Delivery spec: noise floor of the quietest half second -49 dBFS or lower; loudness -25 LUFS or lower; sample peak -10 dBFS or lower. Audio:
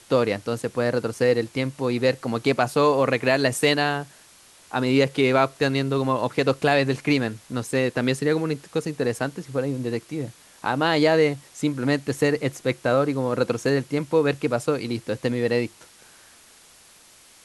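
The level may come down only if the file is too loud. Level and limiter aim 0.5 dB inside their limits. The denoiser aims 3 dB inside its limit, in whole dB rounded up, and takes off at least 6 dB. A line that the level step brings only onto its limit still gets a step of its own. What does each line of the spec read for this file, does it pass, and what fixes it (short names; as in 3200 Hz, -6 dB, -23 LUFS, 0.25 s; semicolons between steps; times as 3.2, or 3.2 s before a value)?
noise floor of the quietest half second -52 dBFS: OK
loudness -23.5 LUFS: fail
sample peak -6.0 dBFS: fail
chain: gain -2 dB; limiter -10.5 dBFS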